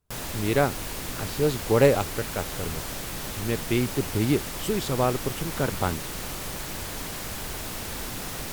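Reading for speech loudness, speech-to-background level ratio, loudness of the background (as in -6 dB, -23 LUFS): -26.5 LUFS, 6.5 dB, -33.0 LUFS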